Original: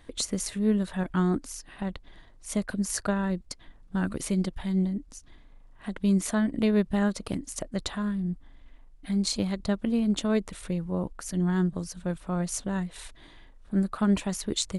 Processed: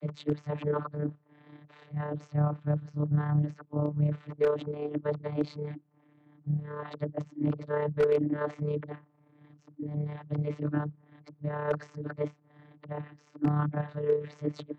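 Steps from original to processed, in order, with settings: reverse the whole clip; low-pass 2.4 kHz 12 dB/octave; vocoder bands 32, saw 148 Hz; AM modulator 34 Hz, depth 25%; wavefolder -17.5 dBFS

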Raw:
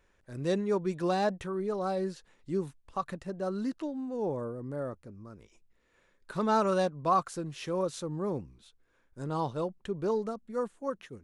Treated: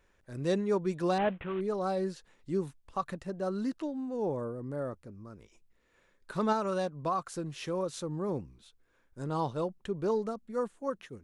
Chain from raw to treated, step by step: 1.18–1.61 s: CVSD coder 16 kbps; 6.52–8.29 s: compression 3:1, threshold -29 dBFS, peak gain reduction 6.5 dB

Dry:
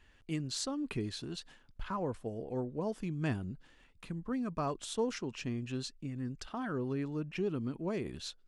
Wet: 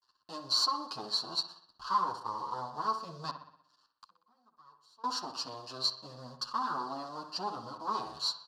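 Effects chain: comb filter that takes the minimum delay 0.7 ms; gate with hold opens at -56 dBFS; waveshaping leveller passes 3; 3.30–5.04 s: inverted gate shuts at -32 dBFS, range -26 dB; in parallel at -10 dB: bit crusher 7-bit; on the sum: two resonant band-passes 2.2 kHz, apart 2.1 oct; on a send: feedback echo behind a low-pass 62 ms, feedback 53%, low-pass 3 kHz, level -9 dB; on the sum: endless flanger 8.2 ms +0.56 Hz; trim +9 dB

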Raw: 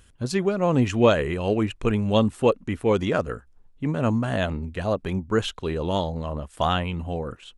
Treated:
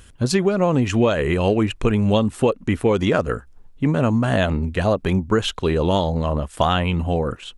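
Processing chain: compression 10:1, threshold -22 dBFS, peak gain reduction 10.5 dB; trim +8.5 dB

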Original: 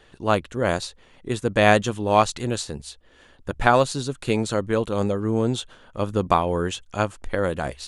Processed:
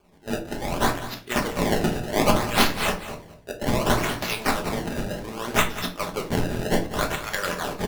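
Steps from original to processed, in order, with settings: chunks repeated in reverse 143 ms, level -11.5 dB; treble shelf 9.2 kHz +3.5 dB; harmonic-percussive split percussive +8 dB; differentiator; level rider gain up to 10 dB; decimation with a swept rate 23×, swing 160% 0.65 Hz; one-sided clip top -23 dBFS; delay 196 ms -13.5 dB; simulated room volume 230 m³, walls furnished, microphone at 1.3 m

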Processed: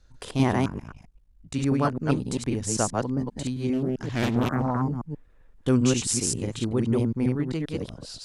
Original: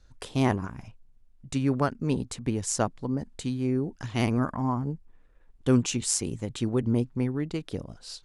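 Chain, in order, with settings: chunks repeated in reverse 132 ms, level -1 dB; 0.67–1.54 s: ring modulator 26 Hz; 3.73–4.82 s: loudspeaker Doppler distortion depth 0.61 ms

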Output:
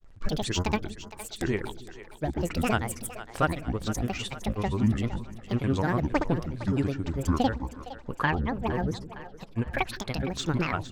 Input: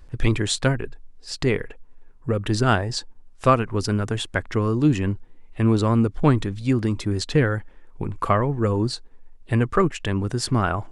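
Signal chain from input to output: granulator, pitch spread up and down by 12 st; two-band feedback delay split 410 Hz, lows 160 ms, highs 461 ms, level -13.5 dB; trim -5.5 dB

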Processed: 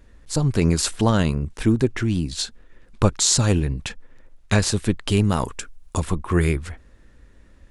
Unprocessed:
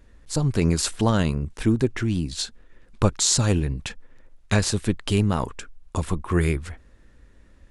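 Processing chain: 5.24–6.00 s: treble shelf 5.9 kHz +10 dB; trim +2 dB

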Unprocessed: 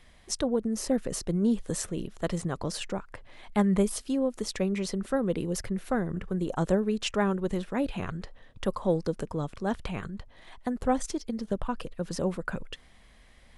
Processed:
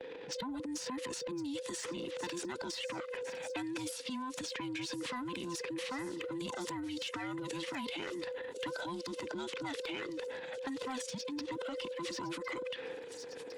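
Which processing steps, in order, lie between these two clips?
every band turned upside down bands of 500 Hz; gate with hold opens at -49 dBFS; high-pass 110 Hz 12 dB/octave; level-controlled noise filter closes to 700 Hz, open at -26.5 dBFS; frequency weighting D; transient shaper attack -7 dB, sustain +10 dB; compression 16:1, threshold -37 dBFS, peak gain reduction 17 dB; saturation -31 dBFS, distortion -22 dB; feedback echo behind a high-pass 1057 ms, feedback 61%, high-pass 4.7 kHz, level -14 dB; three bands compressed up and down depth 70%; trim +1 dB

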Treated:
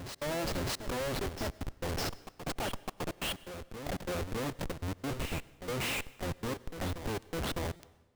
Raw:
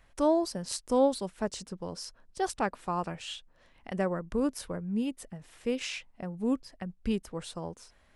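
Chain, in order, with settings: octave divider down 1 oct, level +3 dB; low-pass 10 kHz 12 dB/octave; tone controls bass -14 dB, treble -8 dB; in parallel at +2.5 dB: compression 6:1, threshold -43 dBFS, peak gain reduction 20.5 dB; on the sum: flange 0.33 Hz, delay 4.8 ms, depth 3.6 ms, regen -66%; Schmitt trigger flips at -44 dBFS; trance gate "x.xxxxx.xxxx.x." 140 bpm -60 dB; reverse echo 607 ms -8.5 dB; on a send at -20.5 dB: reverberation RT60 1.1 s, pre-delay 86 ms; on the sum: buffer glitch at 7.76 s, samples 256, times 5; trim +3 dB

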